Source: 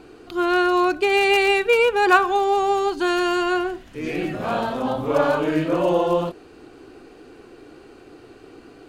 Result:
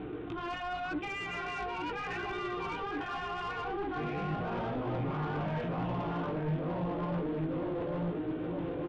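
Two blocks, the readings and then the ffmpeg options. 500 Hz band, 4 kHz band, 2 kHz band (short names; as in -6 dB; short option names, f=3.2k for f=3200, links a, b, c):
-16.5 dB, -16.5 dB, -16.0 dB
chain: -filter_complex "[0:a]acrossover=split=2000[a][b];[a]aecho=1:1:6.5:0.39[c];[b]alimiter=level_in=1dB:limit=-24dB:level=0:latency=1,volume=-1dB[d];[c][d]amix=inputs=2:normalize=0,asplit=2[e][f];[f]adelay=903,lowpass=f=1.7k:p=1,volume=-4dB,asplit=2[g][h];[h]adelay=903,lowpass=f=1.7k:p=1,volume=0.4,asplit=2[i][j];[j]adelay=903,lowpass=f=1.7k:p=1,volume=0.4,asplit=2[k][l];[l]adelay=903,lowpass=f=1.7k:p=1,volume=0.4,asplit=2[m][n];[n]adelay=903,lowpass=f=1.7k:p=1,volume=0.4[o];[e][g][i][k][m][o]amix=inputs=6:normalize=0,afftfilt=real='re*lt(hypot(re,im),0.501)':imag='im*lt(hypot(re,im),0.501)':win_size=1024:overlap=0.75,acrusher=bits=2:mode=log:mix=0:aa=0.000001,aresample=8000,aresample=44100,flanger=delay=16:depth=4:speed=0.84,highpass=66,areverse,acompressor=threshold=-35dB:ratio=12,areverse,aemphasis=mode=reproduction:type=75kf,asoftclip=type=tanh:threshold=-36.5dB,lowshelf=f=220:g=11,volume=4.5dB"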